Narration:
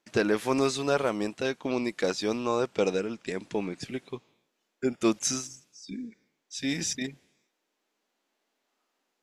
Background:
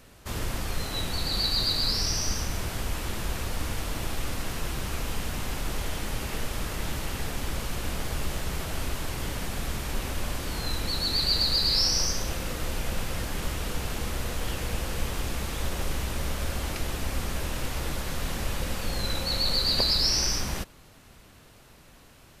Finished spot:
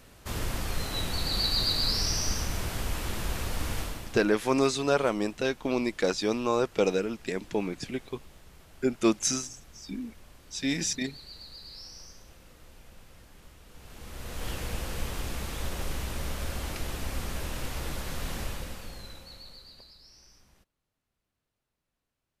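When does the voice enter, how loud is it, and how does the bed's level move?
4.00 s, +1.0 dB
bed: 3.81 s -1 dB
4.38 s -22 dB
13.66 s -22 dB
14.47 s -3.5 dB
18.41 s -3.5 dB
19.98 s -31.5 dB

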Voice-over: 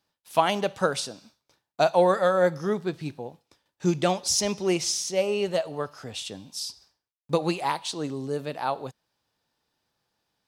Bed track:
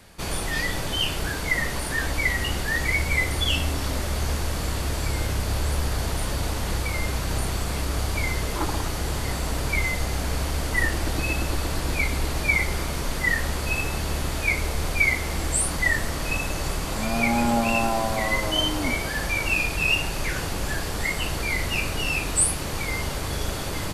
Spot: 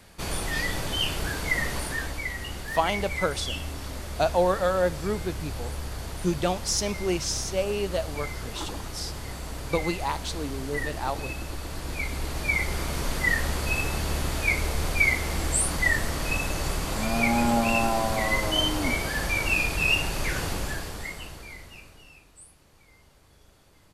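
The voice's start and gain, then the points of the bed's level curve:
2.40 s, -2.5 dB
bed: 1.81 s -2 dB
2.25 s -9 dB
11.61 s -9 dB
13.03 s -1 dB
20.52 s -1 dB
22.32 s -29.5 dB

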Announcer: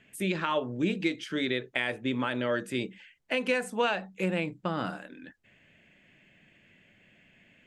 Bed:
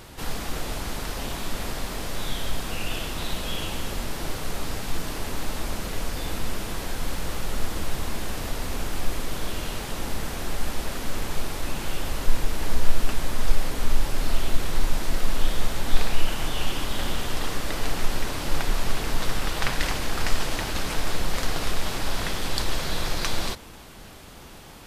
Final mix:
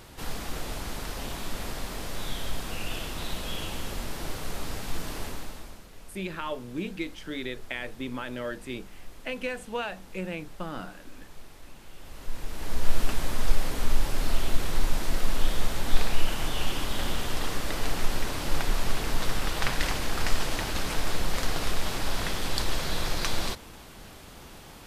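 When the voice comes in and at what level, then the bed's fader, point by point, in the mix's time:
5.95 s, -5.0 dB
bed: 5.24 s -4 dB
5.87 s -19 dB
11.92 s -19 dB
12.95 s -2 dB

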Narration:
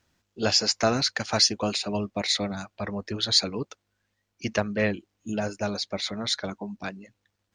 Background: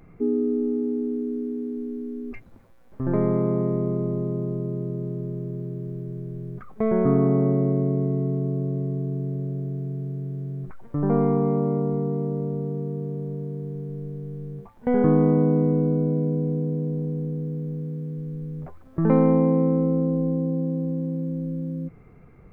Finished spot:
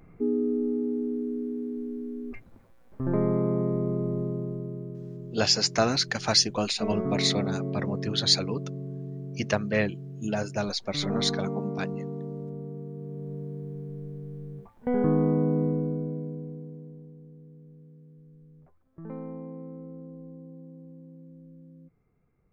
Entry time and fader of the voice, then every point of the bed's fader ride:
4.95 s, -0.5 dB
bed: 4.22 s -3 dB
4.98 s -9.5 dB
12.93 s -9.5 dB
13.35 s -5 dB
15.65 s -5 dB
17.16 s -20.5 dB

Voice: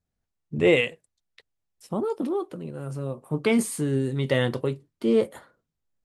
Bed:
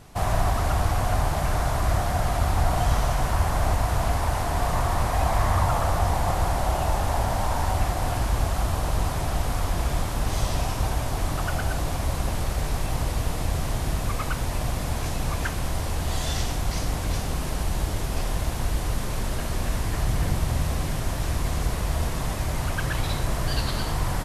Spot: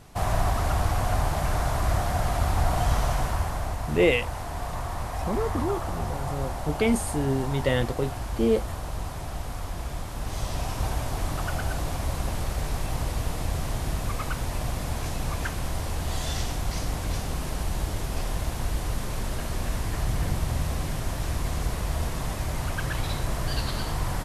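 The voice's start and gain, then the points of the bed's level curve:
3.35 s, -1.5 dB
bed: 3.16 s -1.5 dB
3.72 s -8 dB
10.03 s -8 dB
10.86 s -2.5 dB

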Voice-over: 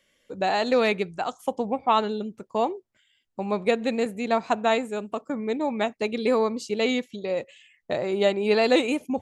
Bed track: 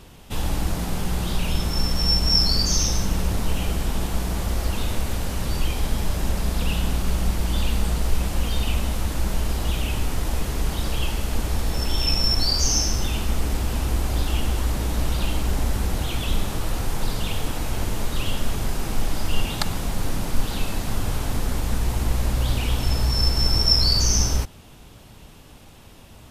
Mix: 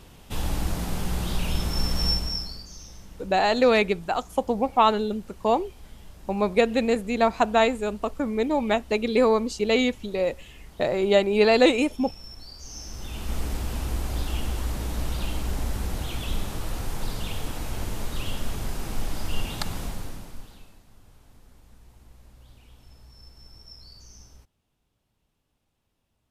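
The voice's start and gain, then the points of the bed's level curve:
2.90 s, +2.5 dB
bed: 2.08 s -3 dB
2.67 s -22.5 dB
12.6 s -22.5 dB
13.35 s -5.5 dB
19.84 s -5.5 dB
20.85 s -29.5 dB

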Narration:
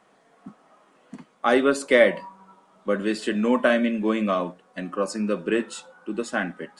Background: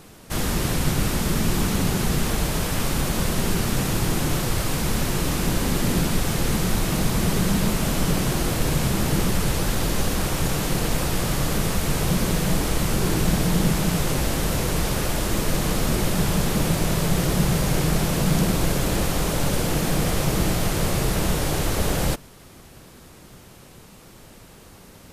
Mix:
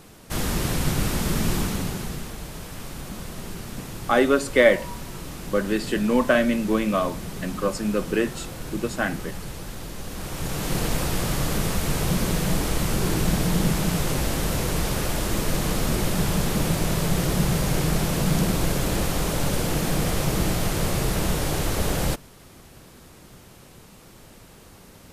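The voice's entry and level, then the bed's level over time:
2.65 s, +0.5 dB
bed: 1.53 s -1.5 dB
2.34 s -12.5 dB
10.01 s -12.5 dB
10.76 s -1.5 dB

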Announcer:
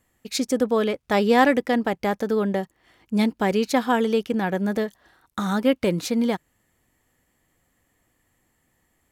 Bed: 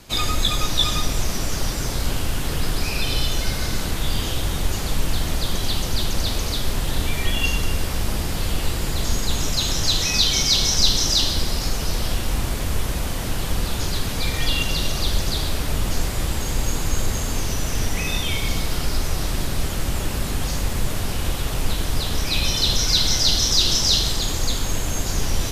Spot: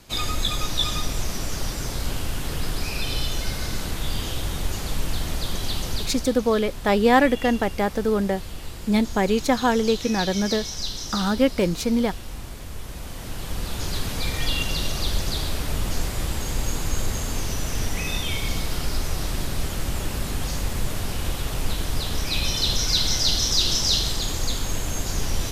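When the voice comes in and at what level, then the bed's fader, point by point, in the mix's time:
5.75 s, +0.5 dB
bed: 5.93 s -4 dB
6.37 s -12.5 dB
12.76 s -12.5 dB
13.98 s -3 dB

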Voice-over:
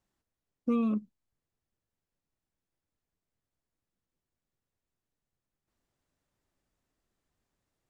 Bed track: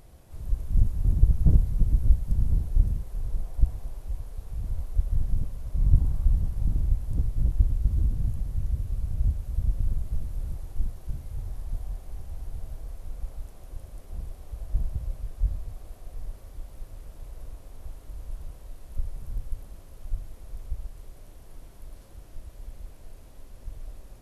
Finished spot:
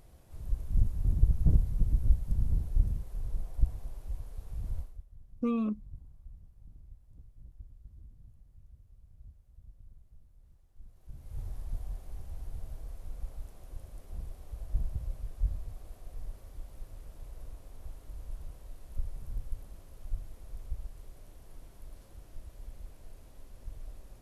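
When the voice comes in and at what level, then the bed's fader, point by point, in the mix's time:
4.75 s, -2.0 dB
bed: 4.79 s -5 dB
5.06 s -27.5 dB
10.71 s -27.5 dB
11.39 s -4.5 dB

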